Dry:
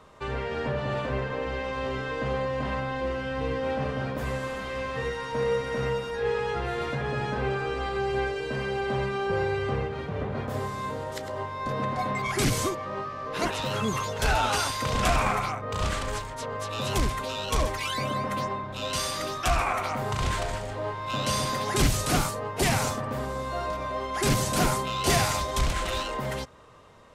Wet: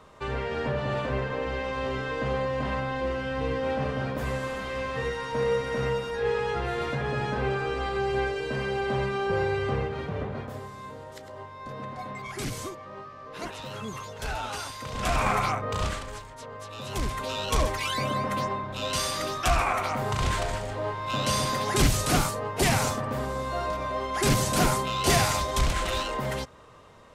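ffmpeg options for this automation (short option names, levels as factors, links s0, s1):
-af "volume=11.9,afade=t=out:st=10.09:d=0.52:silence=0.354813,afade=t=in:st=14.93:d=0.61:silence=0.237137,afade=t=out:st=15.54:d=0.52:silence=0.266073,afade=t=in:st=16.88:d=0.46:silence=0.375837"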